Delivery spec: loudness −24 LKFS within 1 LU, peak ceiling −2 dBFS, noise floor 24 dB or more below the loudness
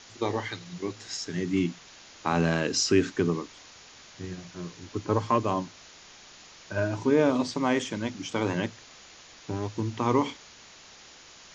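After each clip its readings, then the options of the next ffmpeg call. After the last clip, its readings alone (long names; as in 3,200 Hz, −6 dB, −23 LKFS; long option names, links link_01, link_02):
background noise floor −51 dBFS; target noise floor −53 dBFS; integrated loudness −28.5 LKFS; sample peak −10.0 dBFS; target loudness −24.0 LKFS
→ -af "afftdn=noise_reduction=6:noise_floor=-51"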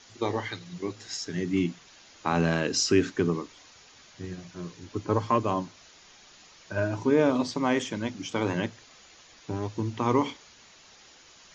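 background noise floor −54 dBFS; integrated loudness −28.5 LKFS; sample peak −10.0 dBFS; target loudness −24.0 LKFS
→ -af "volume=4.5dB"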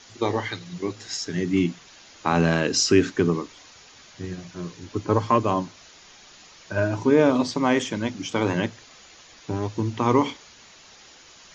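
integrated loudness −24.0 LKFS; sample peak −5.5 dBFS; background noise floor −50 dBFS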